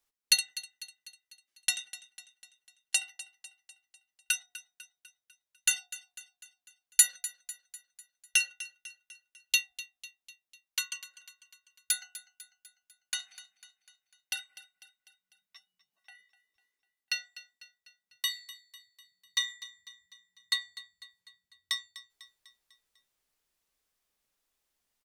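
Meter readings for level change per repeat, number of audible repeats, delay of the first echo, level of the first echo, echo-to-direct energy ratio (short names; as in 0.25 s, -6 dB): -5.5 dB, 4, 0.249 s, -16.0 dB, -14.5 dB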